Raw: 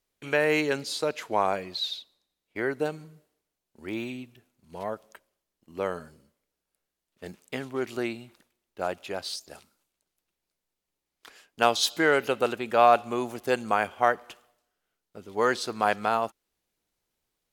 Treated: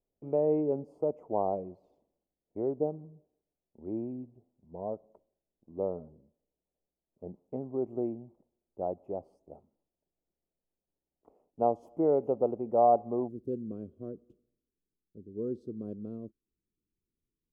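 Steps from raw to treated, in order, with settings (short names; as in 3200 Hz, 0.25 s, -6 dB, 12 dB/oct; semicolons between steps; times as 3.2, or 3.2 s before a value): inverse Chebyshev low-pass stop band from 1500 Hz, stop band 40 dB, from 13.27 s stop band from 750 Hz; gain -1.5 dB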